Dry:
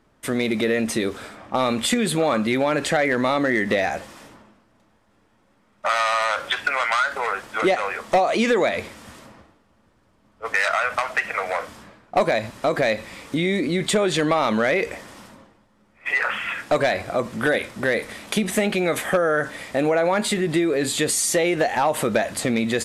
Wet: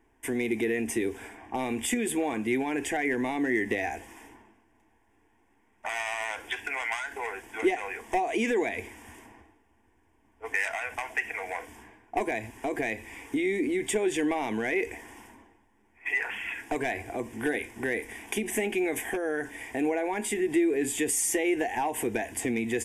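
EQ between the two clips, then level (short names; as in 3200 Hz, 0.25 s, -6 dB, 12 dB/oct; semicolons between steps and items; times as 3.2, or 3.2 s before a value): dynamic EQ 1200 Hz, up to -7 dB, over -35 dBFS, Q 0.8; fixed phaser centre 850 Hz, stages 8; -2.0 dB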